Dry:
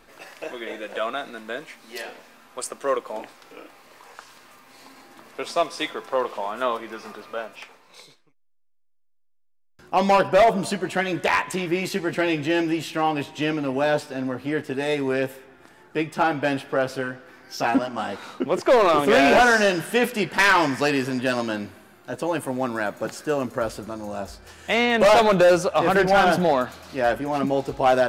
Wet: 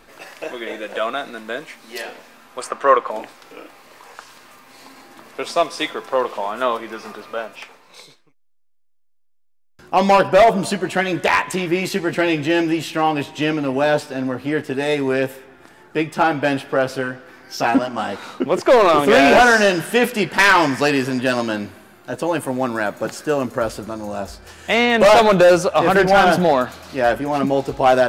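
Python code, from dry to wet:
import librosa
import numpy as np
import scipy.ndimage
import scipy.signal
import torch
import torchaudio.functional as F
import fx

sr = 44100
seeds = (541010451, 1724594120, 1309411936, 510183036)

y = fx.curve_eq(x, sr, hz=(340.0, 1200.0, 11000.0), db=(0, 10, -10), at=(2.61, 3.11))
y = F.gain(torch.from_numpy(y), 4.5).numpy()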